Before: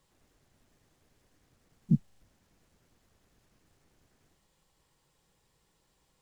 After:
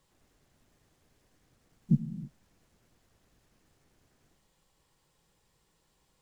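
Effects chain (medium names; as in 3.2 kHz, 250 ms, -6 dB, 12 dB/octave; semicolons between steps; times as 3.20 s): gated-style reverb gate 350 ms flat, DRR 11 dB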